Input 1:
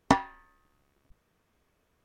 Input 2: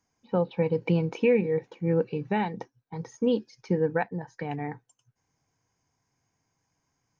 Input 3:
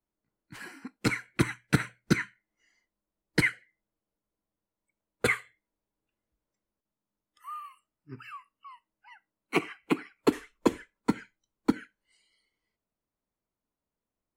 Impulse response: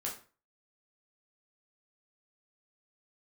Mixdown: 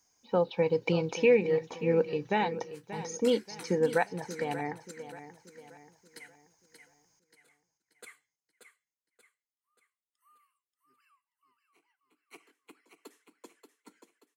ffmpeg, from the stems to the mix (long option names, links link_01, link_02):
-filter_complex "[0:a]lowpass=1400,adelay=1600,volume=-13dB[link_01];[1:a]lowshelf=frequency=94:gain=9.5,volume=0.5dB,asplit=3[link_02][link_03][link_04];[link_03]volume=-13.5dB[link_05];[2:a]highpass=frequency=170:width=0.5412,highpass=frequency=170:width=1.3066,adelay=2200,volume=-11.5dB,asplit=2[link_06][link_07];[link_07]volume=-14.5dB[link_08];[link_04]apad=whole_len=730398[link_09];[link_06][link_09]sidechaingate=range=-29dB:threshold=-53dB:ratio=16:detection=peak[link_10];[link_01][link_10]amix=inputs=2:normalize=0,flanger=delay=16:depth=7.4:speed=1.4,alimiter=level_in=9.5dB:limit=-24dB:level=0:latency=1:release=278,volume=-9.5dB,volume=0dB[link_11];[link_05][link_08]amix=inputs=2:normalize=0,aecho=0:1:582|1164|1746|2328|2910|3492:1|0.42|0.176|0.0741|0.0311|0.0131[link_12];[link_02][link_11][link_12]amix=inputs=3:normalize=0,bass=frequency=250:gain=-12,treble=frequency=4000:gain=12"